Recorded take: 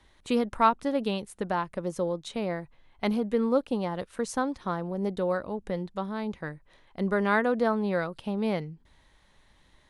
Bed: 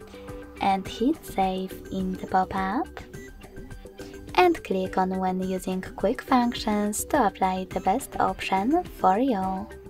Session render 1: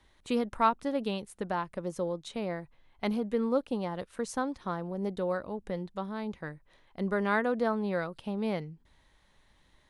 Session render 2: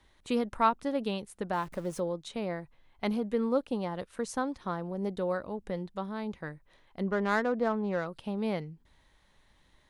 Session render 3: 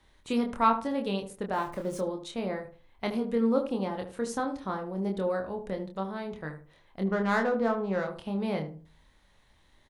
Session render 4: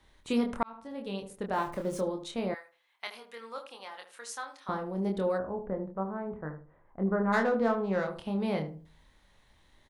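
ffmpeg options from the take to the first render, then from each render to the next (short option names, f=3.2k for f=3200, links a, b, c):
-af "volume=-3.5dB"
-filter_complex "[0:a]asettb=1/sr,asplit=3[a][b][c];[a]atrim=end=1.534[d];[b]atrim=start=1.53:end=2,asetpts=PTS-STARTPTS,afade=t=in:d=0.004:c=qsin,afade=t=out:st=0.466:d=0.004:c=qsin,aeval=exprs='val(0)+0.5*0.00531*sgn(val(0))':c=same[e];[c]atrim=start=1.996[f];[d][e]acrossfade=d=0.004:c1=hsin:c2=qsin[g];[g][f]acrossfade=d=0.004:c1=qsin:c2=hsin,asettb=1/sr,asplit=3[h][i][j];[h]atrim=end=7.024[k];[i]atrim=start=7.02:end=8.06,asetpts=PTS-STARTPTS,afade=t=in:d=0.004:c=qsin,afade=t=out:st=1.036:d=0.004:c=qsin,adynamicsmooth=sensitivity=4:basefreq=2k[l];[j]atrim=start=8.056[m];[k][l]acrossfade=d=0.004:c1=hsin:c2=qsin[n];[n][m]acrossfade=d=0.004:c1=qsin:c2=hsin"
-filter_complex "[0:a]asplit=2[a][b];[b]adelay=26,volume=-4.5dB[c];[a][c]amix=inputs=2:normalize=0,asplit=2[d][e];[e]adelay=75,lowpass=f=1k:p=1,volume=-8dB,asplit=2[f][g];[g]adelay=75,lowpass=f=1k:p=1,volume=0.31,asplit=2[h][i];[i]adelay=75,lowpass=f=1k:p=1,volume=0.31,asplit=2[j][k];[k]adelay=75,lowpass=f=1k:p=1,volume=0.31[l];[d][f][h][j][l]amix=inputs=5:normalize=0"
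-filter_complex "[0:a]asettb=1/sr,asplit=3[a][b][c];[a]atrim=end=2.544[d];[b]atrim=start=2.54:end=4.69,asetpts=PTS-STARTPTS,afade=t=in:d=0.004:c=qsin,afade=t=out:st=2.146:d=0.004:c=qsin,highpass=1.3k[e];[c]atrim=start=4.686[f];[d][e]acrossfade=d=0.004:c1=hsin:c2=qsin[g];[g][f]acrossfade=d=0.004:c1=qsin:c2=hsin,asplit=3[h][i][j];[h]afade=t=out:st=5.37:d=0.02[k];[i]lowpass=f=1.5k:w=0.5412,lowpass=f=1.5k:w=1.3066,afade=t=in:st=5.37:d=0.02,afade=t=out:st=7.32:d=0.02[l];[j]afade=t=in:st=7.32:d=0.02[m];[k][l][m]amix=inputs=3:normalize=0,asplit=2[n][o];[n]atrim=end=0.63,asetpts=PTS-STARTPTS,afade=t=out:st=0.626:d=0.004:c=hsin[p];[o]atrim=start=0.63,asetpts=PTS-STARTPTS,afade=t=in:d=0.97[q];[p][q]concat=n=2:v=0:a=1"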